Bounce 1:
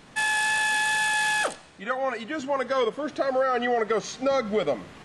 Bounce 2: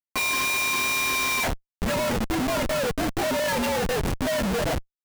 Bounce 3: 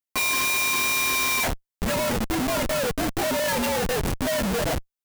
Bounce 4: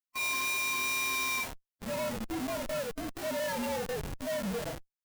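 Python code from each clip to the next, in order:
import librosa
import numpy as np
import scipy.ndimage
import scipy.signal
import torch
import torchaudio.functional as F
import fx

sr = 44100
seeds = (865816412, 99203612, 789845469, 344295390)

y1 = fx.partial_stretch(x, sr, pct=117)
y1 = fx.schmitt(y1, sr, flips_db=-33.5)
y1 = y1 * 10.0 ** (3.5 / 20.0)
y2 = fx.high_shelf(y1, sr, hz=7000.0, db=5.5)
y3 = fx.hpss(y2, sr, part='percussive', gain_db=-16)
y3 = y3 * 10.0 ** (-7.0 / 20.0)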